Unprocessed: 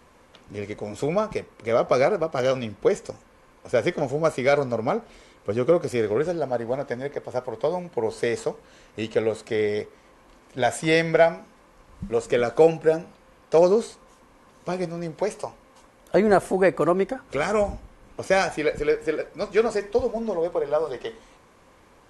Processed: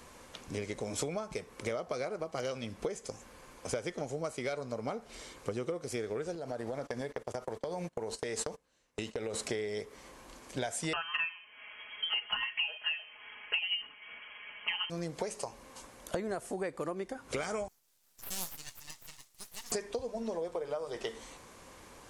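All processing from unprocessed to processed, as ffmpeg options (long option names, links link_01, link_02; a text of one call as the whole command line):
ffmpeg -i in.wav -filter_complex "[0:a]asettb=1/sr,asplit=3[link_01][link_02][link_03];[link_01]atrim=end=6.354[link_04];[link_02]atrim=start=6.35:end=9.34,asetpts=PTS-STARTPTS,afade=type=in:duration=0.004:curve=qsin,afade=type=out:start_time=2.986:duration=0.004:curve=qsin,agate=range=-25dB:threshold=-38dB:ratio=16:release=100:detection=peak,acompressor=threshold=-30dB:ratio=6:attack=3.2:release=140:knee=1:detection=peak[link_05];[link_03]atrim=start=9.336[link_06];[link_04][link_05]acrossfade=duration=0.004:curve1=hsin:curve2=qsin[link_07];[link_07][link_06]acrossfade=duration=0.004:curve1=qsin:curve2=hsin,asettb=1/sr,asplit=3[link_08][link_09][link_10];[link_08]atrim=end=10.934[link_11];[link_09]atrim=start=10.93:end=14.9,asetpts=PTS-STARTPTS,afade=type=in:duration=0.004:curve=qsin,afade=type=out:start_time=3.966:duration=0.004:curve=qsin,tiltshelf=frequency=710:gain=-8,aecho=1:1:4.9:0.96,atrim=end_sample=175077,lowpass=frequency=2800:width_type=q:width=0.5098,lowpass=frequency=2800:width_type=q:width=0.6013,lowpass=frequency=2800:width_type=q:width=0.9,lowpass=frequency=2800:width_type=q:width=2.563,afreqshift=-3300[link_12];[link_10]atrim=start=14.896[link_13];[link_11][link_12]acrossfade=duration=0.004:curve1=hsin:curve2=qsin[link_14];[link_14][link_13]acrossfade=duration=0.004:curve1=qsin:curve2=hsin,asettb=1/sr,asplit=3[link_15][link_16][link_17];[link_15]atrim=end=17.684[link_18];[link_16]atrim=start=17.68:end=19.72,asetpts=PTS-STARTPTS,afade=type=in:duration=0.004:curve=qsin,afade=type=out:start_time=2.036:duration=0.004:curve=qsin,bandpass=frequency=6500:width_type=q:width=2.8,aeval=exprs='abs(val(0))':channel_layout=same[link_19];[link_17]atrim=start=19.716[link_20];[link_18][link_19]acrossfade=duration=0.004:curve1=hsin:curve2=qsin[link_21];[link_21][link_20]acrossfade=duration=0.004:curve1=qsin:curve2=hsin,equalizer=frequency=6800:width=0.6:gain=3.5,acompressor=threshold=-33dB:ratio=12,highshelf=frequency=4600:gain=7" out.wav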